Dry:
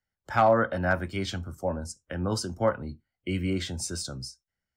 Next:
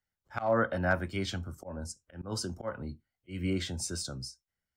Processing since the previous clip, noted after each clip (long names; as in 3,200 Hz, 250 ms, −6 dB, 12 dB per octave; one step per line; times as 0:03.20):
volume swells 190 ms
level −2.5 dB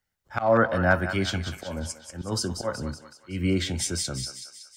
feedback echo with a high-pass in the loop 187 ms, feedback 58%, high-pass 930 Hz, level −8 dB
level +7 dB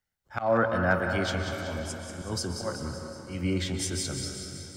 dense smooth reverb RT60 3.9 s, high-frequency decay 0.7×, pre-delay 110 ms, DRR 5 dB
level −4 dB